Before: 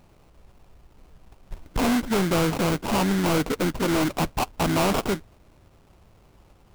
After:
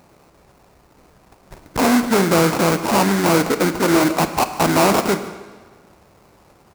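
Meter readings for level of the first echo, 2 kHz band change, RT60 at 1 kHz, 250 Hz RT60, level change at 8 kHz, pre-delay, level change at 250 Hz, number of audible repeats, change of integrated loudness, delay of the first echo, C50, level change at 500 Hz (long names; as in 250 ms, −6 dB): −19.5 dB, +8.0 dB, 1.5 s, 1.5 s, +8.5 dB, 29 ms, +6.0 dB, 1, +7.0 dB, 149 ms, 10.5 dB, +8.0 dB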